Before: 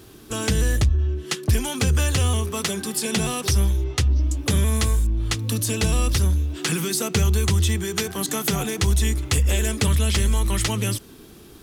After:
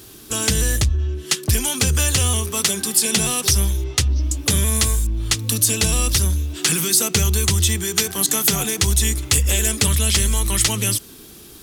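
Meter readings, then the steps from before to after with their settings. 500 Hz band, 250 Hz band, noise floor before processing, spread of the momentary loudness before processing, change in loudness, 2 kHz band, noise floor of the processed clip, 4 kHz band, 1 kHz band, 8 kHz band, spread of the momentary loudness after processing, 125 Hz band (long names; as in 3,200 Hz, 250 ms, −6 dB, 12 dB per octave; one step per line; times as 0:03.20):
0.0 dB, 0.0 dB, −46 dBFS, 5 LU, +4.0 dB, +3.5 dB, −42 dBFS, +6.5 dB, +1.0 dB, +9.5 dB, 5 LU, 0.0 dB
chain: high-shelf EQ 3,100 Hz +11 dB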